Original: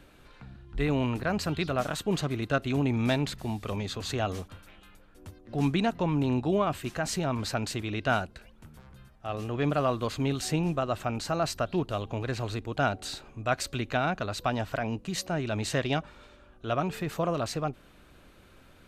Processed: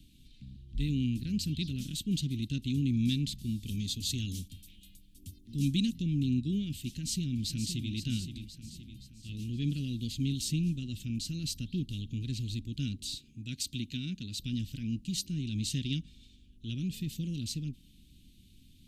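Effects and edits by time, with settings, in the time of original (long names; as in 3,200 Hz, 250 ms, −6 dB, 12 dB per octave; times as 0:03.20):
0:03.66–0:06.02: high-shelf EQ 5,700 Hz +9 dB
0:06.93–0:07.92: delay throw 520 ms, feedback 50%, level −8.5 dB
0:13.17–0:14.39: high-pass filter 130 Hz 6 dB per octave
whole clip: elliptic band-stop filter 250–3,200 Hz, stop band 80 dB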